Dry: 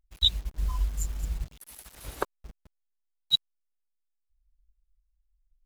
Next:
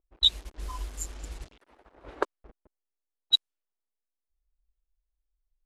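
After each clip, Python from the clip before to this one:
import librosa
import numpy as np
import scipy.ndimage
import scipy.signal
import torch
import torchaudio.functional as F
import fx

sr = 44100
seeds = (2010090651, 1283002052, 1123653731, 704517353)

y = scipy.signal.sosfilt(scipy.signal.butter(4, 12000.0, 'lowpass', fs=sr, output='sos'), x)
y = fx.env_lowpass(y, sr, base_hz=760.0, full_db=-25.0)
y = fx.low_shelf_res(y, sr, hz=230.0, db=-10.0, q=1.5)
y = F.gain(torch.from_numpy(y), 1.5).numpy()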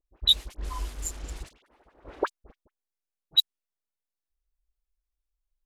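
y = fx.leveller(x, sr, passes=1)
y = fx.dispersion(y, sr, late='highs', ms=51.0, hz=1400.0)
y = F.gain(torch.from_numpy(y), -1.0).numpy()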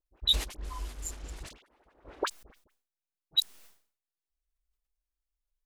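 y = fx.sustainer(x, sr, db_per_s=120.0)
y = F.gain(torch.from_numpy(y), -5.0).numpy()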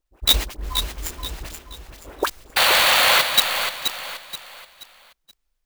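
y = fx.spec_paint(x, sr, seeds[0], shape='noise', start_s=2.56, length_s=0.66, low_hz=480.0, high_hz=4700.0, level_db=-25.0)
y = fx.echo_feedback(y, sr, ms=478, feedback_pct=35, wet_db=-7.5)
y = fx.clock_jitter(y, sr, seeds[1], jitter_ms=0.025)
y = F.gain(torch.from_numpy(y), 9.0).numpy()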